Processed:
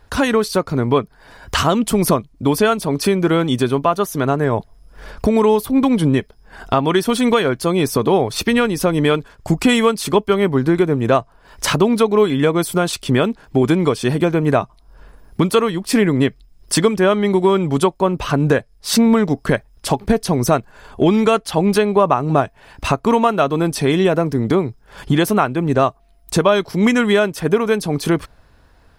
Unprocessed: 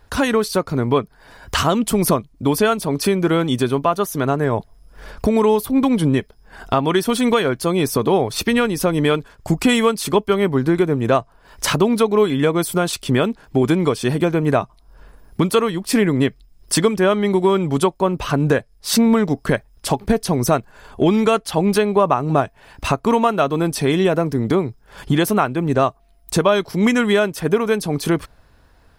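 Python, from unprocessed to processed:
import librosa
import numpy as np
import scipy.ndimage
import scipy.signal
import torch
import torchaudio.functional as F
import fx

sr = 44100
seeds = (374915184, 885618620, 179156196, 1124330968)

y = fx.high_shelf(x, sr, hz=11000.0, db=-4.5)
y = y * librosa.db_to_amplitude(1.5)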